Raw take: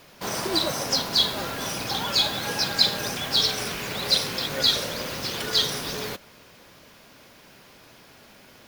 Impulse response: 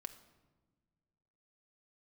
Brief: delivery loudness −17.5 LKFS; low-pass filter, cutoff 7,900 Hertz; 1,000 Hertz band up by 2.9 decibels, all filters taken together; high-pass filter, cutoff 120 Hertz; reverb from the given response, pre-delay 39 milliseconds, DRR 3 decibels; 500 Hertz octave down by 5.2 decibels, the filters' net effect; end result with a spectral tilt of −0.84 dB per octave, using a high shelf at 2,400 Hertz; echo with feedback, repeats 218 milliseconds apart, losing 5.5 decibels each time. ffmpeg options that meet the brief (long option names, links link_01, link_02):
-filter_complex "[0:a]highpass=120,lowpass=7900,equalizer=frequency=500:width_type=o:gain=-8.5,equalizer=frequency=1000:width_type=o:gain=5.5,highshelf=frequency=2400:gain=3.5,aecho=1:1:218|436|654|872|1090|1308|1526:0.531|0.281|0.149|0.079|0.0419|0.0222|0.0118,asplit=2[link_01][link_02];[1:a]atrim=start_sample=2205,adelay=39[link_03];[link_02][link_03]afir=irnorm=-1:irlink=0,volume=1dB[link_04];[link_01][link_04]amix=inputs=2:normalize=0,volume=1dB"